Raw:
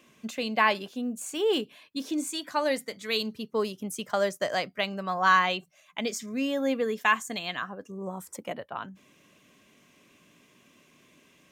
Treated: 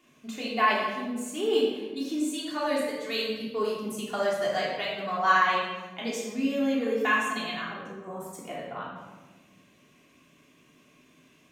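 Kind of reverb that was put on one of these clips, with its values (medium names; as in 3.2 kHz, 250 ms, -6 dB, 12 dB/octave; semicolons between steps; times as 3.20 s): simulated room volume 810 m³, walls mixed, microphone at 3.3 m; trim -7.5 dB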